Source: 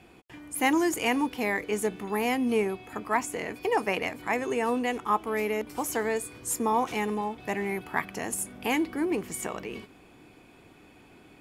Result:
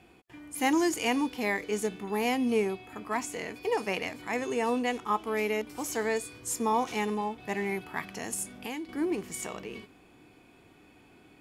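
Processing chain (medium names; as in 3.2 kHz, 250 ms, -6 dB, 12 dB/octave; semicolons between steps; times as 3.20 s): dynamic bell 5.1 kHz, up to +8 dB, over -48 dBFS, Q 0.74; harmonic-percussive split percussive -7 dB; 8.47–8.89 s: compression 4:1, threshold -35 dBFS, peak gain reduction 10 dB; trim -1 dB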